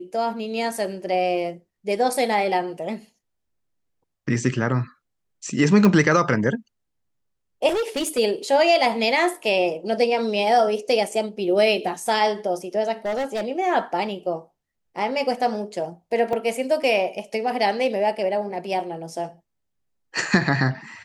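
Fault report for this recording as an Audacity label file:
5.850000	5.850000	pop -7 dBFS
7.680000	8.190000	clipped -20 dBFS
13.050000	13.450000	clipped -22 dBFS
16.330000	16.330000	gap 2.2 ms

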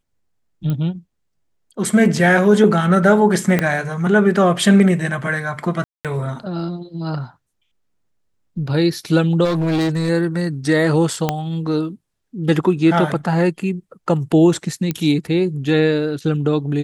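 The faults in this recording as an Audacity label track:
0.700000	0.700000	pop -13 dBFS
3.590000	3.590000	pop -4 dBFS
5.840000	6.050000	gap 0.207 s
9.440000	10.100000	clipped -15.5 dBFS
11.290000	11.290000	pop -4 dBFS
14.910000	14.910000	pop -8 dBFS

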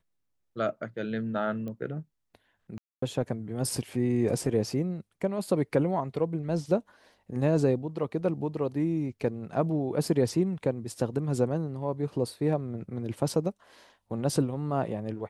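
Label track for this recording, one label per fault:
1.680000	1.680000	pop -27 dBFS
2.780000	3.020000	gap 0.244 s

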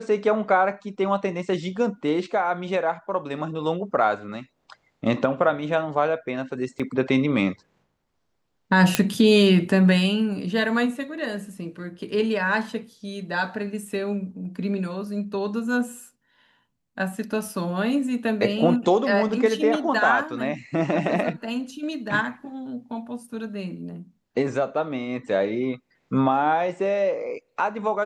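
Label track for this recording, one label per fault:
6.790000	6.800000	gap 5.9 ms
8.950000	8.950000	pop -2 dBFS

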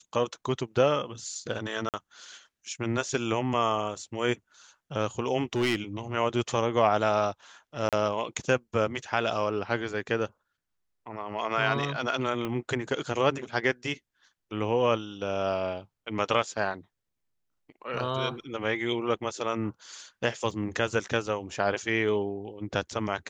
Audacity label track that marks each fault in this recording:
1.890000	1.940000	gap 48 ms
5.530000	5.760000	clipped -21 dBFS
7.890000	7.930000	gap 37 ms
12.450000	12.450000	pop -19 dBFS
20.510000	20.510000	gap 2.3 ms

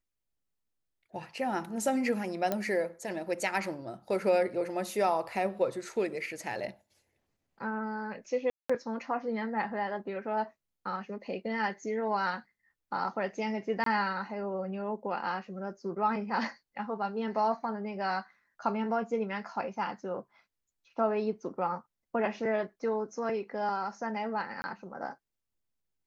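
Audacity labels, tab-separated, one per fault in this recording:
2.520000	2.520000	pop -16 dBFS
8.500000	8.700000	gap 0.195 s
13.840000	13.860000	gap 23 ms
24.620000	24.640000	gap 20 ms

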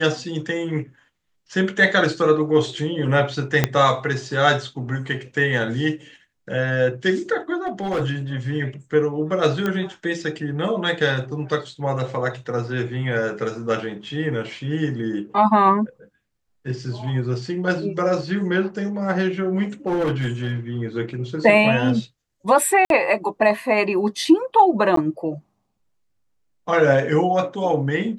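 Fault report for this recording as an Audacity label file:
3.640000	3.640000	pop -2 dBFS
7.660000	8.030000	clipped -19 dBFS
9.660000	9.660000	pop -11 dBFS
19.860000	20.520000	clipped -17.5 dBFS
22.850000	22.900000	gap 52 ms
24.960000	24.970000	gap 13 ms

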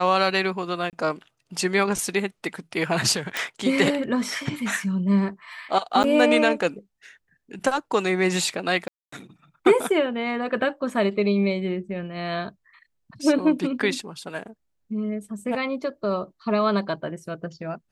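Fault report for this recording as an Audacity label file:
0.900000	0.930000	gap 28 ms
3.370000	3.370000	pop
6.030000	6.040000	gap 9.2 ms
8.880000	9.120000	gap 0.244 s

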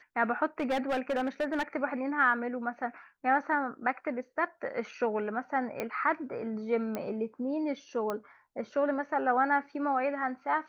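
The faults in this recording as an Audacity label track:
0.600000	1.630000	clipped -26 dBFS
5.800000	5.800000	pop -19 dBFS
6.950000	6.950000	pop -20 dBFS
8.100000	8.100000	pop -20 dBFS

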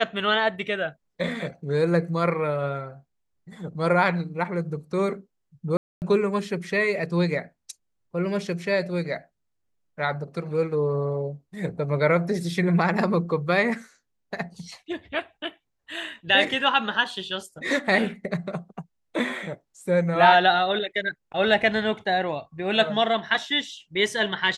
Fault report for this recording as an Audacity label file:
5.770000	6.020000	gap 0.249 s

